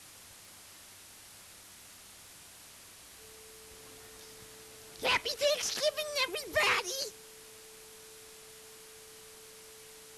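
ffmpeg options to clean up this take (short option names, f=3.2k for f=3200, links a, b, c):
-af "adeclick=t=4,bandreject=f=440:w=30,afwtdn=0.0028"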